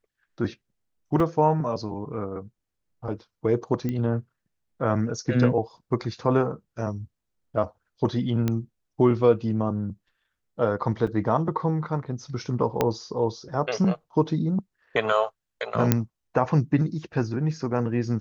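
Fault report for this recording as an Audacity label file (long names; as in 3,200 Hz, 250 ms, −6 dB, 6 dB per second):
1.200000	1.200000	drop-out 2.7 ms
3.890000	3.890000	click −17 dBFS
8.480000	8.480000	click −12 dBFS
11.070000	11.070000	drop-out 4.2 ms
12.810000	12.810000	click −8 dBFS
15.920000	15.920000	click −4 dBFS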